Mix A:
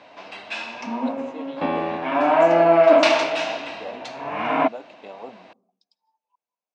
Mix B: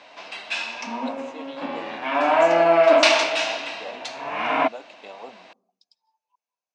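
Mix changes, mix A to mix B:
second sound -8.5 dB; master: add tilt EQ +2.5 dB/octave

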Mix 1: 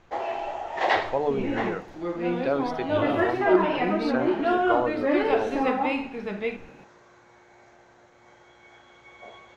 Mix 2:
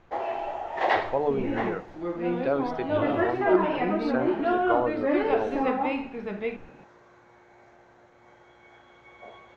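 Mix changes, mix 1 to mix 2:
second sound: send -6.0 dB; master: add treble shelf 3.7 kHz -10 dB

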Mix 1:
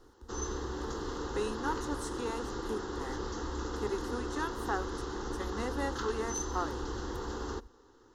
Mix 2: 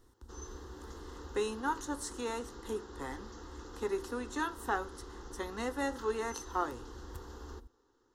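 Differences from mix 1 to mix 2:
first sound -12.0 dB; second sound -7.5 dB; reverb: on, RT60 0.40 s

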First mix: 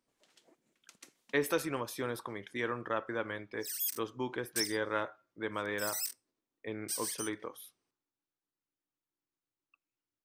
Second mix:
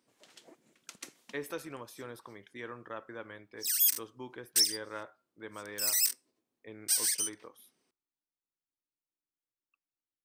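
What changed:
speech -8.0 dB; background +9.0 dB

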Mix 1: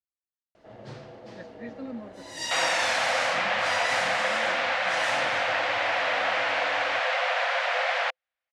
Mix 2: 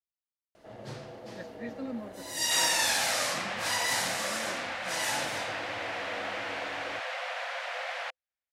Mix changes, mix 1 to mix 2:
second sound -10.5 dB; master: remove distance through air 79 m

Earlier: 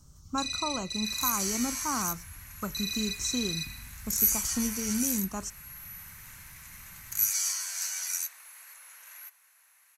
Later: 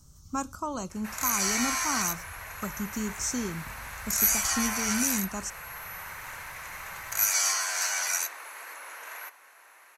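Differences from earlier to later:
first sound: muted; second sound: remove differentiator; master: add treble shelf 6 kHz +4 dB

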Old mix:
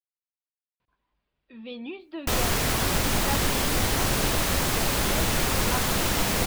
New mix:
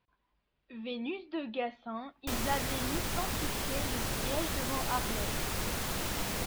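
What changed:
speech: entry -0.80 s; background -10.0 dB

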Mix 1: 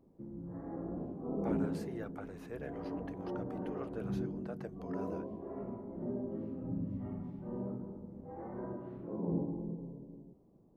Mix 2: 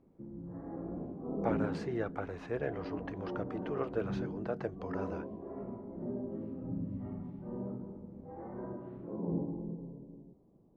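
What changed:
speech +9.0 dB; master: add distance through air 130 m

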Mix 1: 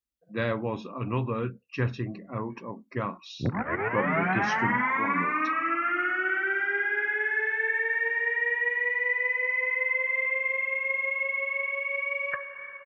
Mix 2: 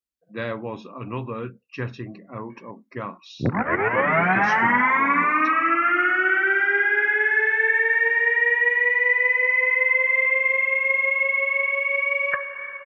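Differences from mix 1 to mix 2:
background +7.5 dB; master: add bass shelf 110 Hz -7.5 dB

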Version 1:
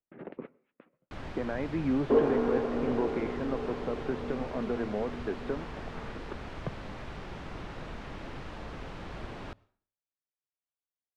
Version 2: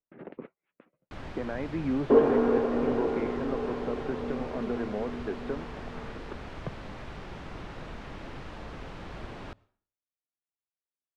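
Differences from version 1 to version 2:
speech: send off; second sound +4.0 dB

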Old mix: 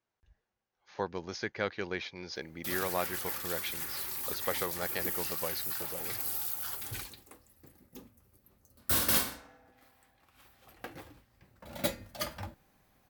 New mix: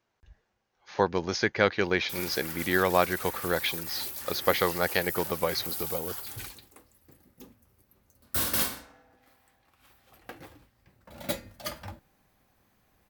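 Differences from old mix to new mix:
speech +10.0 dB; background: entry -0.55 s

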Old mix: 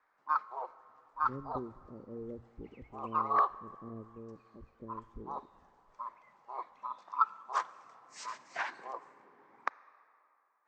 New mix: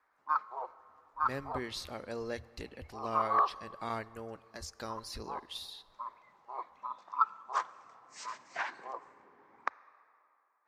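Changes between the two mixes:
speech: remove inverse Chebyshev low-pass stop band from 1.1 kHz, stop band 50 dB; master: add peaking EQ 80 Hz +11 dB 0.39 oct

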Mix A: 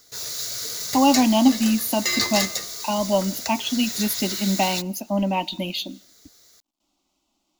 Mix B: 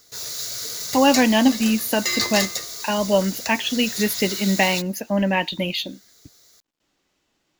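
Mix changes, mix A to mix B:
speech: remove static phaser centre 460 Hz, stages 6; reverb: off

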